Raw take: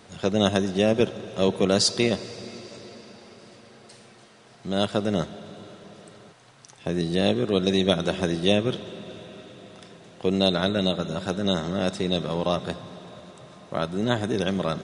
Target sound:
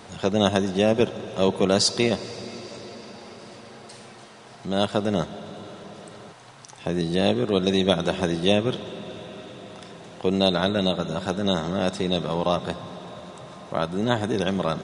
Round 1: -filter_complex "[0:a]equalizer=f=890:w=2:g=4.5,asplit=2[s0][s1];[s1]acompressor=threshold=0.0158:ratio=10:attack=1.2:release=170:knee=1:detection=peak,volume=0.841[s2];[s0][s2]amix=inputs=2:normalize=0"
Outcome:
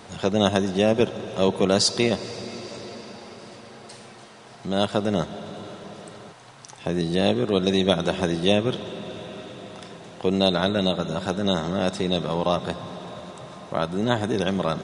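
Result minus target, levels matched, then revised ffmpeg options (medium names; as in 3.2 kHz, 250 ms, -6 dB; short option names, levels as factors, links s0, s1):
compression: peak gain reduction -5.5 dB
-filter_complex "[0:a]equalizer=f=890:w=2:g=4.5,asplit=2[s0][s1];[s1]acompressor=threshold=0.00794:ratio=10:attack=1.2:release=170:knee=1:detection=peak,volume=0.841[s2];[s0][s2]amix=inputs=2:normalize=0"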